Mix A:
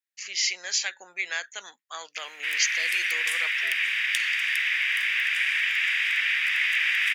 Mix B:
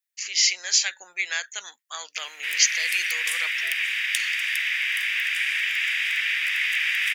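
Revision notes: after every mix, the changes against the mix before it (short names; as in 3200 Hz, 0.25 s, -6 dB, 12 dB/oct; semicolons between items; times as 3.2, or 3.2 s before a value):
background -3.0 dB; master: add tilt +2.5 dB/oct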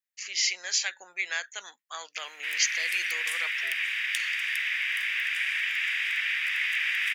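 master: add high shelf 2400 Hz -8 dB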